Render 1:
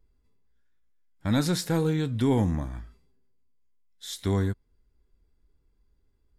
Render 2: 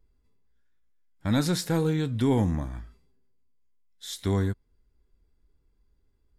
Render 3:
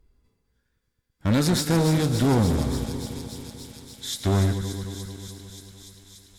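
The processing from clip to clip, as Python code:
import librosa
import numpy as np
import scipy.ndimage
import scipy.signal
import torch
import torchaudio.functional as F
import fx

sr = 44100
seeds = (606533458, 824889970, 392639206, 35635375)

y1 = x
y2 = fx.reverse_delay_fb(y1, sr, ms=110, feedback_pct=81, wet_db=-13.0)
y2 = fx.clip_asym(y2, sr, top_db=-28.5, bottom_db=-18.5)
y2 = fx.echo_wet_highpass(y2, sr, ms=290, feedback_pct=82, hz=3800.0, wet_db=-6.5)
y2 = y2 * librosa.db_to_amplitude(6.0)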